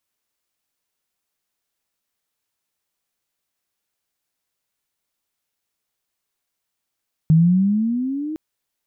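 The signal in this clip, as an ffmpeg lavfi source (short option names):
-f lavfi -i "aevalsrc='pow(10,(-9-15.5*t/1.06)/20)*sin(2*PI*155*1.06/(12.5*log(2)/12)*(exp(12.5*log(2)/12*t/1.06)-1))':d=1.06:s=44100"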